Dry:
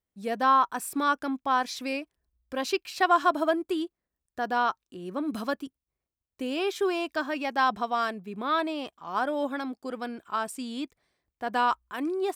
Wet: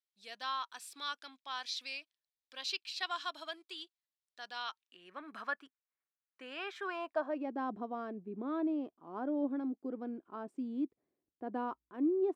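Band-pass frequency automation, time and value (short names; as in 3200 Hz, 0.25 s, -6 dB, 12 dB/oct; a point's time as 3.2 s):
band-pass, Q 2.1
4.61 s 3900 Hz
5.31 s 1600 Hz
6.84 s 1600 Hz
7.5 s 310 Hz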